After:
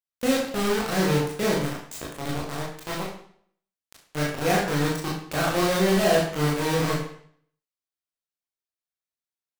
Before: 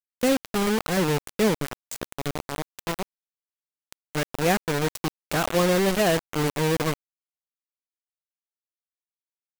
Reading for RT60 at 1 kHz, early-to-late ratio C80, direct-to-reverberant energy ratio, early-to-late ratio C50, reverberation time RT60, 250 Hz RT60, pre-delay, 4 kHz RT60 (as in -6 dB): 0.60 s, 7.0 dB, -4.5 dB, 3.0 dB, 0.60 s, 0.60 s, 20 ms, 0.55 s